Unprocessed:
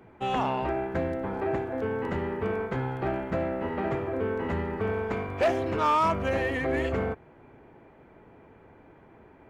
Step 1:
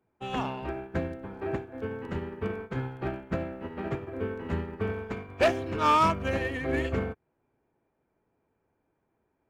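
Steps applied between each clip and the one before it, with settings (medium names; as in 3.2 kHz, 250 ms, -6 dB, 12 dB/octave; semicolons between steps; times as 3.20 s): band-stop 2 kHz, Q 17; dynamic bell 750 Hz, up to -6 dB, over -39 dBFS, Q 0.81; upward expansion 2.5:1, over -45 dBFS; trim +7 dB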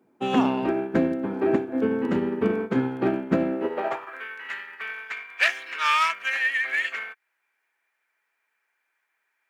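bass shelf 170 Hz +4.5 dB; in parallel at -2 dB: compression, threshold -33 dBFS, peak gain reduction 14.5 dB; on the sum: high-pass sweep 250 Hz -> 1.9 kHz, 3.50–4.25 s; trim +3 dB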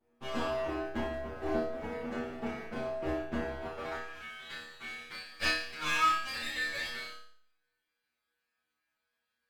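comb filter that takes the minimum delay 8.6 ms; inharmonic resonator 77 Hz, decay 0.49 s, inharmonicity 0.002; flutter echo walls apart 5 m, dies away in 0.56 s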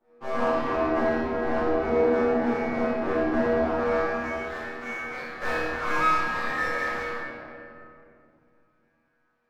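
median filter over 15 samples; overdrive pedal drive 19 dB, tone 1.3 kHz, clips at -19.5 dBFS; reverberation RT60 2.6 s, pre-delay 6 ms, DRR -7.5 dB; trim -2 dB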